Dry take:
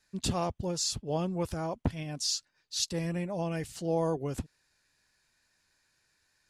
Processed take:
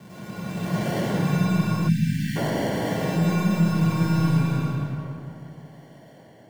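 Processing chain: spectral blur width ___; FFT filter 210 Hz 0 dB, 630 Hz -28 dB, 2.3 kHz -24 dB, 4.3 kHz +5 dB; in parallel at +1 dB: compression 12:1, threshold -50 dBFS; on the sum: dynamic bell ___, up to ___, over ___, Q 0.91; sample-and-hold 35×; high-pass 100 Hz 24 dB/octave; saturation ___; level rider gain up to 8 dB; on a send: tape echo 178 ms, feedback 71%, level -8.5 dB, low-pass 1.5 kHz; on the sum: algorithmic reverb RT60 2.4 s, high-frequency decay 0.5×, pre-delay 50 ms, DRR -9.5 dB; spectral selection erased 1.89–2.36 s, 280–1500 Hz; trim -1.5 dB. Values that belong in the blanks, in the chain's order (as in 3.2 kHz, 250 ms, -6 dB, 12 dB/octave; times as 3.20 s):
489 ms, 7.5 kHz, -7 dB, -51 dBFS, -28.5 dBFS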